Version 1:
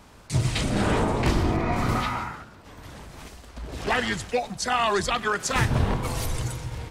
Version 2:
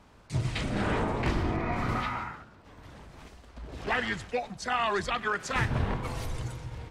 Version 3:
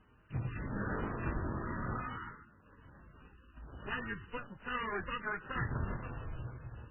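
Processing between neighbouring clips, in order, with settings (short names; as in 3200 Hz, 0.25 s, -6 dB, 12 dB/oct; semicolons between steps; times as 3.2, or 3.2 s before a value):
LPF 3700 Hz 6 dB/oct; dynamic EQ 1900 Hz, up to +4 dB, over -38 dBFS, Q 1; gain -6 dB
minimum comb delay 0.67 ms; gain -7 dB; MP3 8 kbps 12000 Hz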